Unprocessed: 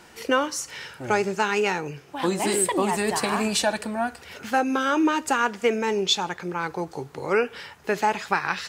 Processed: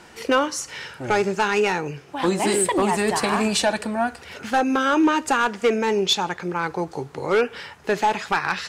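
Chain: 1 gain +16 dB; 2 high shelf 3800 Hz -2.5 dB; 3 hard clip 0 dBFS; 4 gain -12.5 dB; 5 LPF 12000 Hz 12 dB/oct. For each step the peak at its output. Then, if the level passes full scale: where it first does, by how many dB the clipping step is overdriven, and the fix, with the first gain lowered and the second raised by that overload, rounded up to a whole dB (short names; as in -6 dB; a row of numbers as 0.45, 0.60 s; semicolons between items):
+9.5, +9.5, 0.0, -12.5, -11.5 dBFS; step 1, 9.5 dB; step 1 +6 dB, step 4 -2.5 dB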